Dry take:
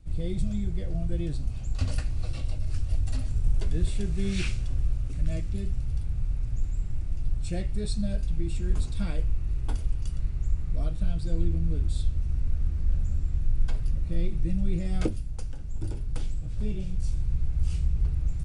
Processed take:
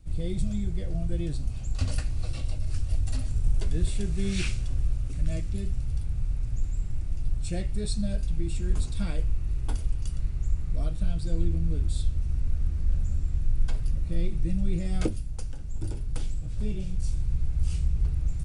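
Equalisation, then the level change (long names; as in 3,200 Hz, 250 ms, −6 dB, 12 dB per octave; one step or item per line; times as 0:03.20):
high-shelf EQ 6,300 Hz +6 dB
0.0 dB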